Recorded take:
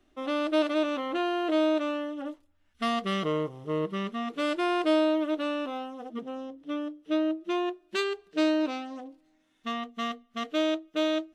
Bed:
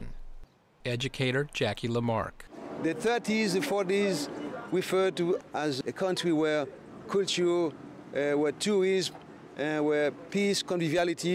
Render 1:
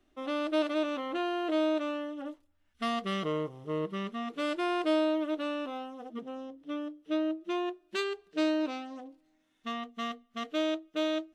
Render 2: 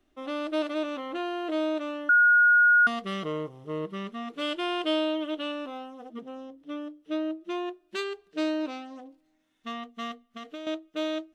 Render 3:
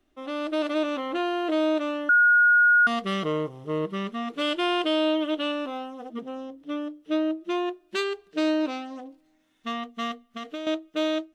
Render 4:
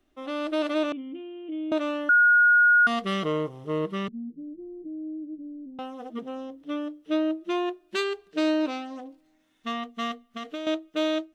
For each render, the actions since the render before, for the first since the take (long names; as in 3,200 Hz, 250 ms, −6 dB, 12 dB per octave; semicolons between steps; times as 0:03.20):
level −3.5 dB
0:02.09–0:02.87: beep over 1,440 Hz −15.5 dBFS; 0:04.41–0:05.52: parametric band 3,100 Hz +12 dB 0.34 octaves; 0:10.25–0:10.67: downward compressor, threshold −35 dBFS
brickwall limiter −19.5 dBFS, peak gain reduction 4 dB; automatic gain control gain up to 5 dB
0:00.92–0:01.72: formant resonators in series i; 0:04.08–0:05.79: inverse Chebyshev low-pass filter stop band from 1,500 Hz, stop band 80 dB